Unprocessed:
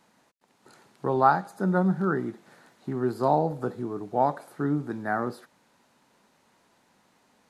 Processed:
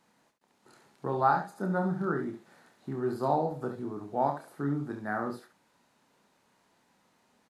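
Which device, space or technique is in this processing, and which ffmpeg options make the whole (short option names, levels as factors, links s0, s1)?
slapback doubling: -filter_complex "[0:a]asplit=3[s0][s1][s2];[s1]adelay=29,volume=0.473[s3];[s2]adelay=70,volume=0.376[s4];[s0][s3][s4]amix=inputs=3:normalize=0,volume=0.531"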